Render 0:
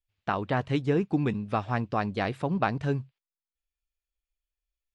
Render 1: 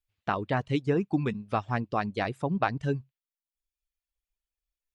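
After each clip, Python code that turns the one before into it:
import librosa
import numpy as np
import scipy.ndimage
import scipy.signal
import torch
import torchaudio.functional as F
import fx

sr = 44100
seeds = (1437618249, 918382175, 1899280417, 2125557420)

y = fx.dereverb_blind(x, sr, rt60_s=0.89)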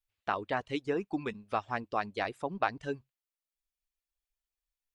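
y = fx.peak_eq(x, sr, hz=140.0, db=-14.0, octaves=1.5)
y = y * 10.0 ** (-2.0 / 20.0)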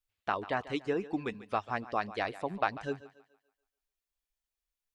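y = fx.echo_thinned(x, sr, ms=143, feedback_pct=41, hz=230.0, wet_db=-16)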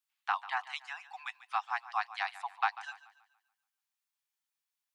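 y = scipy.signal.sosfilt(scipy.signal.butter(16, 760.0, 'highpass', fs=sr, output='sos'), x)
y = y * 10.0 ** (1.5 / 20.0)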